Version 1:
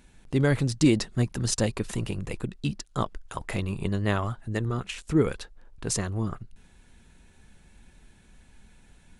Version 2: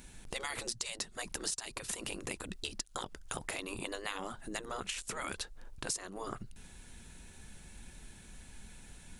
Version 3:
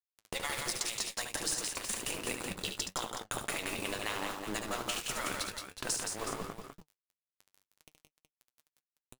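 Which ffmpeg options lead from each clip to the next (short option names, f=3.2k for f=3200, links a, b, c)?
-af "afftfilt=real='re*lt(hypot(re,im),0.112)':imag='im*lt(hypot(re,im),0.112)':win_size=1024:overlap=0.75,highshelf=f=4.9k:g=10,acompressor=threshold=-37dB:ratio=8,volume=2dB"
-filter_complex "[0:a]aeval=exprs='val(0)*gte(abs(val(0)),0.01)':c=same,flanger=delay=5.9:depth=5.4:regen=55:speed=1.4:shape=triangular,asplit=2[a][b];[b]aecho=0:1:72|171|191|371:0.447|0.562|0.224|0.299[c];[a][c]amix=inputs=2:normalize=0,volume=6.5dB"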